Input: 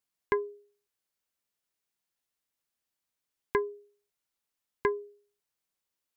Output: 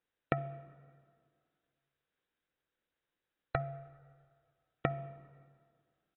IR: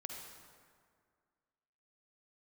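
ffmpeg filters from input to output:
-filter_complex "[0:a]agate=range=-6dB:threshold=-54dB:ratio=16:detection=peak,aeval=exprs='val(0)*sin(2*PI*270*n/s)':c=same,lowshelf=f=330:g=4,acompressor=threshold=-40dB:ratio=12,aresample=11025,aeval=exprs='clip(val(0),-1,0.0501)':c=same,aresample=44100,equalizer=f=315:t=o:w=0.33:g=6,equalizer=f=500:t=o:w=0.33:g=8,equalizer=f=1.6k:t=o:w=0.33:g=8,asplit=2[a][b];[1:a]atrim=start_sample=2205[c];[b][c]afir=irnorm=-1:irlink=0,volume=-11dB[d];[a][d]amix=inputs=2:normalize=0,volume=7.5dB" -ar 24000 -c:a aac -b:a 16k

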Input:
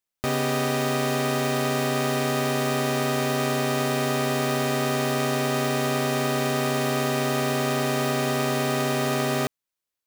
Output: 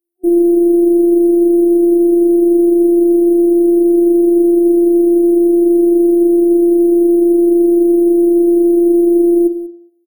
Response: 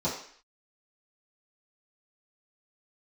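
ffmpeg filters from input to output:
-filter_complex "[0:a]asplit=2[a][b];[1:a]atrim=start_sample=2205,asetrate=37044,aresample=44100[c];[b][c]afir=irnorm=-1:irlink=0,volume=-23.5dB[d];[a][d]amix=inputs=2:normalize=0,alimiter=limit=-20.5dB:level=0:latency=1,highpass=130,aecho=1:1:190:0.158,afftfilt=real='hypot(re,im)*cos(PI*b)':imag='0':win_size=512:overlap=0.75,equalizer=f=340:t=o:w=0.34:g=11.5,aecho=1:1:2.5:0.94,afftfilt=real='re*(1-between(b*sr/4096,720,8600))':imag='im*(1-between(b*sr/4096,720,8600))':win_size=4096:overlap=0.75,superequalizer=6b=2:8b=0.562,volume=5dB"

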